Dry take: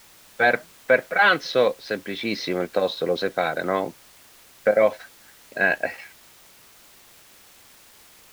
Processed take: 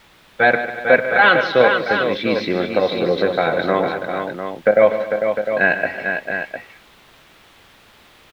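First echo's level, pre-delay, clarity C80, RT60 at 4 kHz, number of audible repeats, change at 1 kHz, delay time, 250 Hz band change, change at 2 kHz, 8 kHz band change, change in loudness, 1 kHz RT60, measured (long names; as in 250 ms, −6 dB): −16.0 dB, no reverb audible, no reverb audible, no reverb audible, 6, +6.0 dB, 102 ms, +7.0 dB, +6.0 dB, can't be measured, +5.0 dB, no reverb audible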